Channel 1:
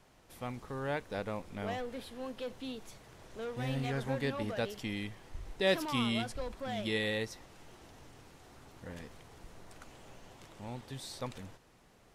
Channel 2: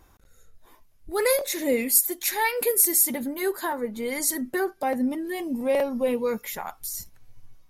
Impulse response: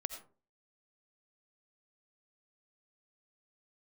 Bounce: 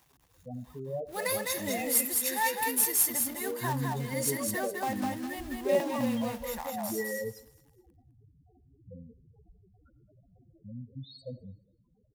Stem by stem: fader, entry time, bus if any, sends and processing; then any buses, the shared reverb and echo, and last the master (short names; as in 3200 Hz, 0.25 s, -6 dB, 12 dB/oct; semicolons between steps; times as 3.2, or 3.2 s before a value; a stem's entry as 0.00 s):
0.0 dB, 0.05 s, send -5 dB, echo send -22.5 dB, loudest bins only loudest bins 4
-8.0 dB, 0.00 s, no send, echo send -3.5 dB, HPF 260 Hz 6 dB/oct; comb 1.1 ms, depth 57%; companded quantiser 4-bit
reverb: on, RT60 0.40 s, pre-delay 45 ms
echo: feedback echo 0.206 s, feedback 26%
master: HPF 54 Hz